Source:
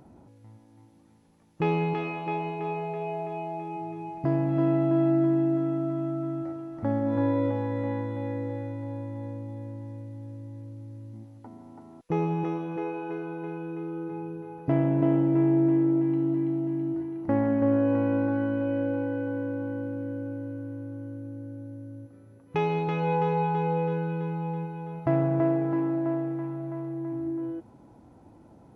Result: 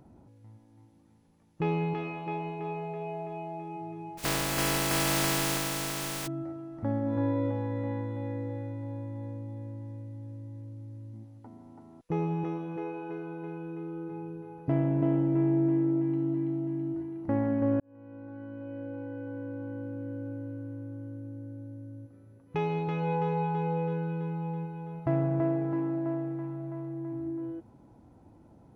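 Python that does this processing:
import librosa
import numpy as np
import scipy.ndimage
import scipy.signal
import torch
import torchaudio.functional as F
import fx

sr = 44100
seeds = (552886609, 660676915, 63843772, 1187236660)

y = fx.spec_flatten(x, sr, power=0.21, at=(4.17, 6.26), fade=0.02)
y = fx.edit(y, sr, fx.fade_in_span(start_s=17.8, length_s=2.49), tone=tone)
y = fx.low_shelf(y, sr, hz=170.0, db=5.5)
y = F.gain(torch.from_numpy(y), -5.0).numpy()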